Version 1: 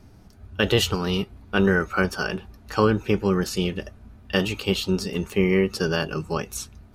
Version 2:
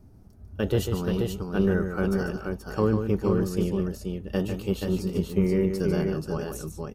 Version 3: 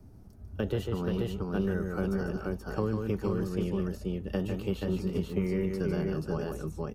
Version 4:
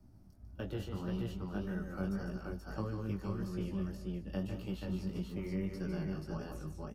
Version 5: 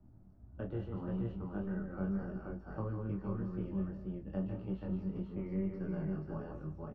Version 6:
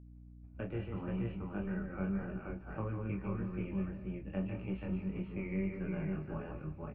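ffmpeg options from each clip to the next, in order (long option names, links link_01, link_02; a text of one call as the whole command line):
ffmpeg -i in.wav -filter_complex "[0:a]equalizer=frequency=2900:width_type=o:width=3:gain=-14.5,aeval=exprs='0.335*(cos(1*acos(clip(val(0)/0.335,-1,1)))-cos(1*PI/2))+0.00596*(cos(6*acos(clip(val(0)/0.335,-1,1)))-cos(6*PI/2))':channel_layout=same,asplit=2[link_01][link_02];[link_02]aecho=0:1:147|480:0.422|0.596[link_03];[link_01][link_03]amix=inputs=2:normalize=0,volume=-2dB" out.wav
ffmpeg -i in.wav -filter_complex "[0:a]acrossover=split=160|930|3200[link_01][link_02][link_03][link_04];[link_01]acompressor=threshold=-34dB:ratio=4[link_05];[link_02]acompressor=threshold=-30dB:ratio=4[link_06];[link_03]acompressor=threshold=-45dB:ratio=4[link_07];[link_04]acompressor=threshold=-57dB:ratio=4[link_08];[link_05][link_06][link_07][link_08]amix=inputs=4:normalize=0" out.wav
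ffmpeg -i in.wav -af "flanger=delay=16:depth=5.3:speed=1.7,superequalizer=7b=0.447:14b=1.41,aecho=1:1:203:0.188,volume=-4.5dB" out.wav
ffmpeg -i in.wav -filter_complex "[0:a]lowpass=1400,asplit=2[link_01][link_02];[link_02]adelay=26,volume=-7dB[link_03];[link_01][link_03]amix=inputs=2:normalize=0,volume=-1dB" out.wav
ffmpeg -i in.wav -af "agate=range=-33dB:threshold=-47dB:ratio=3:detection=peak,lowpass=frequency=2400:width_type=q:width=11,aeval=exprs='val(0)+0.00251*(sin(2*PI*60*n/s)+sin(2*PI*2*60*n/s)/2+sin(2*PI*3*60*n/s)/3+sin(2*PI*4*60*n/s)/4+sin(2*PI*5*60*n/s)/5)':channel_layout=same" out.wav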